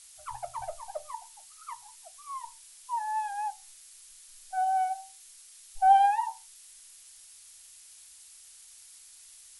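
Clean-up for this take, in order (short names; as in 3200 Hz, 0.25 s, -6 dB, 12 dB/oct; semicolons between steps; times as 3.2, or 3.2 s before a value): noise print and reduce 23 dB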